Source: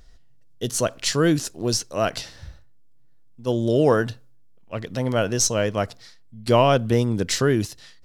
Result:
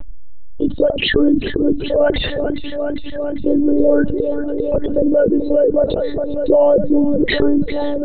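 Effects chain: formant sharpening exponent 3; bell 530 Hz +8 dB 2.1 oct; on a send: thinning echo 0.405 s, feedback 70%, high-pass 150 Hz, level -22 dB; on the sum: monotone LPC vocoder at 8 kHz 290 Hz; fast leveller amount 70%; gain -3.5 dB

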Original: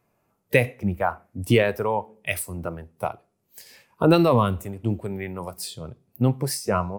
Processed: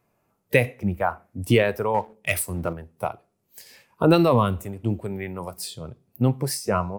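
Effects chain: 1.94–2.73 sample leveller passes 1

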